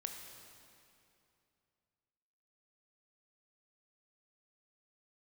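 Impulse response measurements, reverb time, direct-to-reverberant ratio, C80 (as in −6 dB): 2.7 s, 3.0 dB, 5.5 dB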